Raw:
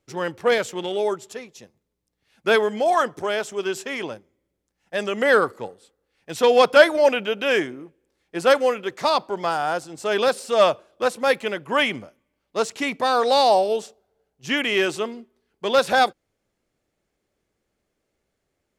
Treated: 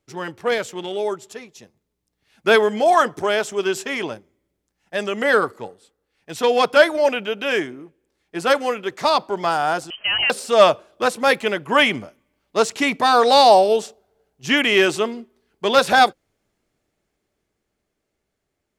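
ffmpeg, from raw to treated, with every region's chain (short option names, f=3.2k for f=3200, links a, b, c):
-filter_complex "[0:a]asettb=1/sr,asplit=3[a][b][c];[a]atrim=end=9.904[d];[b]atrim=start=9.9:end=10.3,asetpts=PTS-STARTPTS,afade=t=in:d=0.004:c=qsin,afade=t=out:st=0.396:d=0.004:c=qsin,acompressor=threshold=-21dB:ratio=4:attack=3.2:release=140:knee=1:detection=peak,lowpass=f=2.8k:t=q:w=0.5098,lowpass=f=2.8k:t=q:w=0.6013,lowpass=f=2.8k:t=q:w=0.9,lowpass=f=2.8k:t=q:w=2.563,afreqshift=-3300[e];[c]atrim=start=10.296[f];[d][e]acrossfade=d=0.004:c1=hsin:c2=qsin[g];[g][f]acrossfade=d=0.004:c1=qsin:c2=hsin,bandreject=f=520:w=12,dynaudnorm=f=140:g=31:m=11.5dB,volume=-1dB"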